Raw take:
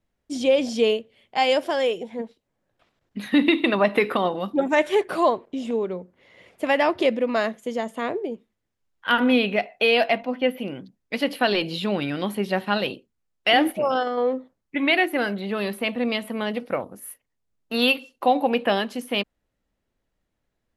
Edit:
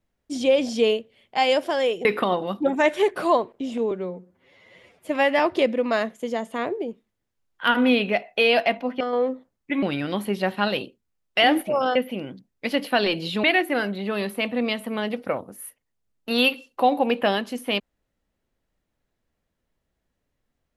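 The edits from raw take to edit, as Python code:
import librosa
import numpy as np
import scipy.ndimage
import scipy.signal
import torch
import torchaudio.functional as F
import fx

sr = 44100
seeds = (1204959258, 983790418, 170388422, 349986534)

y = fx.edit(x, sr, fx.cut(start_s=2.05, length_s=1.93),
    fx.stretch_span(start_s=5.84, length_s=0.99, factor=1.5),
    fx.swap(start_s=10.44, length_s=1.48, other_s=14.05, other_length_s=0.82), tone=tone)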